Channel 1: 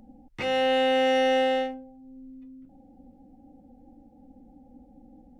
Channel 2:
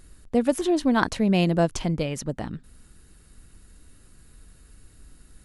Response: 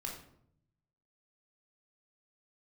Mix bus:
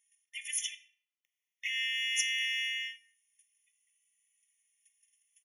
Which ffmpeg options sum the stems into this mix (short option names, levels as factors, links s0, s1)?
-filter_complex "[0:a]aeval=exprs='clip(val(0),-1,0.0316)':c=same,adelay=1250,volume=0.944,asplit=2[s0][s1];[s1]volume=0.422[s2];[1:a]agate=range=0.112:threshold=0.00708:ratio=16:detection=peak,tiltshelf=f=1100:g=-8.5,asplit=2[s3][s4];[s4]adelay=2.8,afreqshift=-0.63[s5];[s3][s5]amix=inputs=2:normalize=1,volume=0.841,asplit=3[s6][s7][s8];[s6]atrim=end=0.75,asetpts=PTS-STARTPTS,afade=t=out:st=0.746:d=0.004:c=hsin[s9];[s7]atrim=start=0.75:end=2.14,asetpts=PTS-STARTPTS,volume=0[s10];[s8]atrim=start=2.14,asetpts=PTS-STARTPTS,afade=t=in:d=0.004:c=hsin[s11];[s9][s10][s11]concat=n=3:v=0:a=1,asplit=2[s12][s13];[s13]volume=0.668[s14];[2:a]atrim=start_sample=2205[s15];[s2][s14]amix=inputs=2:normalize=0[s16];[s16][s15]afir=irnorm=-1:irlink=0[s17];[s0][s12][s17]amix=inputs=3:normalize=0,afftfilt=real='re*eq(mod(floor(b*sr/1024/1800),2),1)':imag='im*eq(mod(floor(b*sr/1024/1800),2),1)':win_size=1024:overlap=0.75"